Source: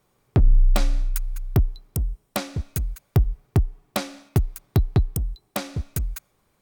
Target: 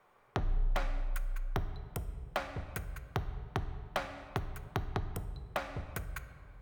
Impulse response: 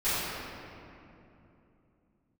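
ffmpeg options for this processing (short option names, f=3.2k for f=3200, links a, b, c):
-filter_complex "[0:a]acrossover=split=550 2400:gain=0.158 1 0.112[a][b][c];[a][b][c]amix=inputs=3:normalize=0,aeval=exprs='0.0891*(abs(mod(val(0)/0.0891+3,4)-2)-1)':c=same,acompressor=threshold=-47dB:ratio=2,asplit=2[d][e];[1:a]atrim=start_sample=2205,asetrate=74970,aresample=44100,lowshelf=f=140:g=7[f];[e][f]afir=irnorm=-1:irlink=0,volume=-18.5dB[g];[d][g]amix=inputs=2:normalize=0,volume=7dB"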